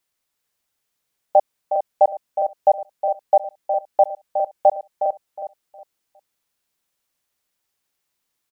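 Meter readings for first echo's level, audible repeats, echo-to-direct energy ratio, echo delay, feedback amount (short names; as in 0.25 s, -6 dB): -9.0 dB, 6, -5.5 dB, 0.363 s, no steady repeat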